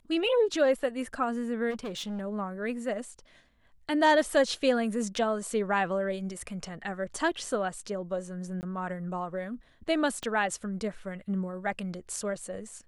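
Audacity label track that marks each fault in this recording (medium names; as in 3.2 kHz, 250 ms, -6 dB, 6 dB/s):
1.700000	2.210000	clipped -32 dBFS
8.610000	8.630000	dropout 19 ms
10.230000	10.230000	pop -20 dBFS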